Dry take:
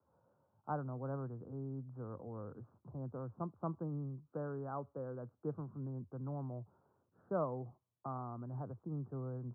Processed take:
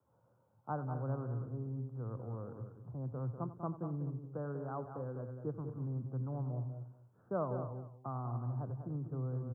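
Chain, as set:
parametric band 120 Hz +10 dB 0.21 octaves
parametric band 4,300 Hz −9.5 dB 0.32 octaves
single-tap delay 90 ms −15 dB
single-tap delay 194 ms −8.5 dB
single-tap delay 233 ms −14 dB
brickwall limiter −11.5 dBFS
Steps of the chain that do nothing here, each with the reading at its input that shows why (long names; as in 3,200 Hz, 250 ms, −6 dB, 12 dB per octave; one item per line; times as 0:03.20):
parametric band 4,300 Hz: nothing at its input above 1,400 Hz
brickwall limiter −11.5 dBFS: peak of its input −25.0 dBFS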